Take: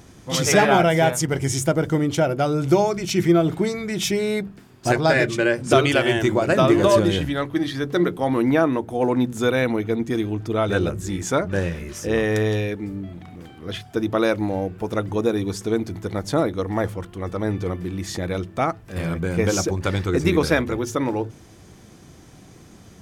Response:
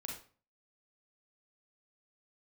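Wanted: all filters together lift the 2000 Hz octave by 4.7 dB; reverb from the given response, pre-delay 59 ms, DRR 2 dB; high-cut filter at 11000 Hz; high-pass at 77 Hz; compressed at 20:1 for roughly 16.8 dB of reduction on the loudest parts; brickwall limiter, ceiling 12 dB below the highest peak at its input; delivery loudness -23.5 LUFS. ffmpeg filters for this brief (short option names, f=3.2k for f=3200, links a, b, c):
-filter_complex "[0:a]highpass=77,lowpass=11k,equalizer=f=2k:t=o:g=6,acompressor=threshold=-27dB:ratio=20,alimiter=level_in=1.5dB:limit=-24dB:level=0:latency=1,volume=-1.5dB,asplit=2[a][b];[1:a]atrim=start_sample=2205,adelay=59[c];[b][c]afir=irnorm=-1:irlink=0,volume=-0.5dB[d];[a][d]amix=inputs=2:normalize=0,volume=9.5dB"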